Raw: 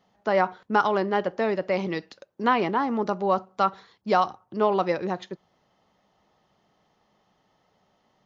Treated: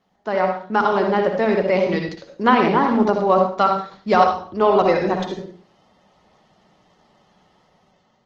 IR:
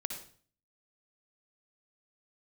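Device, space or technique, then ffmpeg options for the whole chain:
speakerphone in a meeting room: -filter_complex "[0:a]asettb=1/sr,asplit=3[s0][s1][s2];[s0]atrim=end=4.144[s3];[s1]atrim=start=4.14:end=4.79,asetpts=PTS-STARTPTS,afade=t=in:d=0.004:c=qsin,afade=t=out:st=0.646:d=0.004:c=qsin,lowshelf=f=110:t=q:w=3:g=7.5[s4];[s2]atrim=start=4.786[s5];[s3][s4]acrossfade=d=0.004:c1=hsin:c2=qsin[s6];[s6][s5]acrossfade=d=0.004:c1=qsin:c2=hsin[s7];[1:a]atrim=start_sample=2205[s8];[s7][s8]afir=irnorm=-1:irlink=0,dynaudnorm=f=370:g=5:m=2.51,volume=1.12" -ar 48000 -c:a libopus -b:a 16k

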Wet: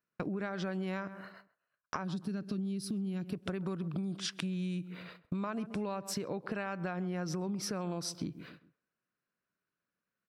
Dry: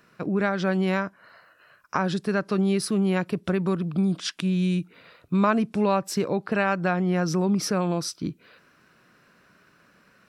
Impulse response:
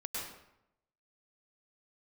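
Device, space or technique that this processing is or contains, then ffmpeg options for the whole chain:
serial compression, peaks first: -filter_complex "[0:a]agate=range=0.0178:threshold=0.00316:ratio=16:detection=peak,asplit=3[s0][s1][s2];[s0]afade=t=out:st=2.03:d=0.02[s3];[s1]equalizer=f=250:t=o:w=1:g=4,equalizer=f=500:t=o:w=1:g=-10,equalizer=f=1000:t=o:w=1:g=-12,equalizer=f=2000:t=o:w=1:g=-11,equalizer=f=8000:t=o:w=1:g=-6,afade=t=in:st=2.03:d=0.02,afade=t=out:st=3.32:d=0.02[s4];[s2]afade=t=in:st=3.32:d=0.02[s5];[s3][s4][s5]amix=inputs=3:normalize=0,asplit=2[s6][s7];[s7]adelay=133,lowpass=f=1500:p=1,volume=0.112,asplit=2[s8][s9];[s9]adelay=133,lowpass=f=1500:p=1,volume=0.3,asplit=2[s10][s11];[s11]adelay=133,lowpass=f=1500:p=1,volume=0.3[s12];[s6][s8][s10][s12]amix=inputs=4:normalize=0,acompressor=threshold=0.0282:ratio=6,acompressor=threshold=0.00891:ratio=2,volume=1.41"

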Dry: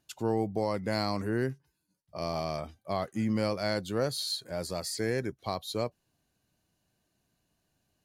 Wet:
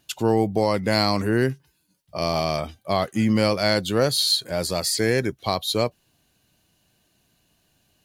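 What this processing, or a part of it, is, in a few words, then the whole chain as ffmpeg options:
presence and air boost: -af "equalizer=f=3100:t=o:w=0.94:g=6,highshelf=f=9100:g=5.5,volume=2.82"

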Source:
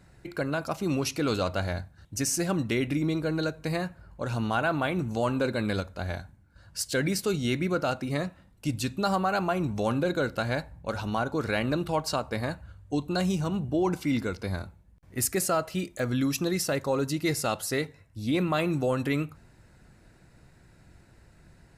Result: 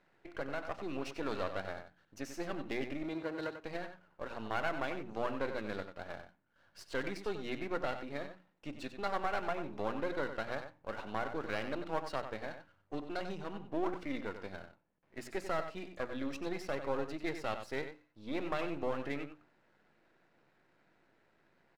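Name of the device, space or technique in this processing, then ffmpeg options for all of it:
crystal radio: -filter_complex "[0:a]highpass=310,lowpass=2800,aeval=exprs='if(lt(val(0),0),0.251*val(0),val(0))':c=same,asettb=1/sr,asplit=3[s0][s1][s2];[s0]atrim=end=3.034[s3];[s1]atrim=start=3.03:end=3.62,asetpts=PTS-STARTPTS,afade=t=in:d=0.004:c=qsin,afade=t=out:st=0.586:d=0.004:c=qsin,highpass=55[s4];[s2]atrim=start=3.616[s5];[s3][s4]acrossfade=d=0.004:c1=hsin:c2=qsin[s6];[s6][s5]acrossfade=d=0.004:c1=qsin:c2=hsin,bandreject=f=60:t=h:w=6,bandreject=f=120:t=h:w=6,bandreject=f=180:t=h:w=6,bandreject=f=240:t=h:w=6,bandreject=f=300:t=h:w=6,asplit=2[s7][s8];[s8]adelay=93.29,volume=0.355,highshelf=f=4000:g=-2.1[s9];[s7][s9]amix=inputs=2:normalize=0,volume=0.596"

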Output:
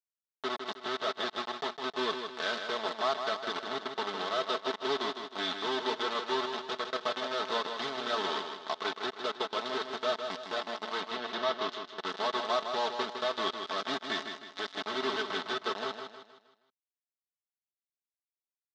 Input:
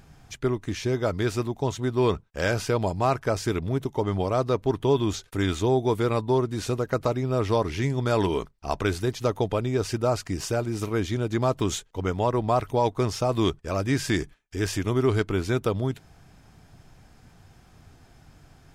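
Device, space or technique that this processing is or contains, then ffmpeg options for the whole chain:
hand-held game console: -filter_complex "[0:a]acrusher=bits=3:mix=0:aa=0.000001,highpass=420,equalizer=f=470:t=q:w=4:g=-6,equalizer=f=1200:t=q:w=4:g=4,equalizer=f=2400:t=q:w=4:g=-7,equalizer=f=3600:t=q:w=4:g=7,lowpass=f=4700:w=0.5412,lowpass=f=4700:w=1.3066,asettb=1/sr,asplit=3[s0][s1][s2];[s0]atrim=end=11.014[s3];[s1]atrim=start=11.01:end=11.85,asetpts=PTS-STARTPTS,afade=t=in:d=0.004:c=qsin,afade=t=out:st=0.836:d=0.004:c=qsin,lowpass=5600[s4];[s2]atrim=start=11.846[s5];[s3][s4]acrossfade=d=0.004:c1=hsin:c2=qsin[s6];[s6][s5]acrossfade=d=0.004:c1=qsin:c2=hsin,aecho=1:1:4.6:0.67,aecho=1:1:157|314|471|628|785:0.447|0.188|0.0788|0.0331|0.0139,volume=0.376"

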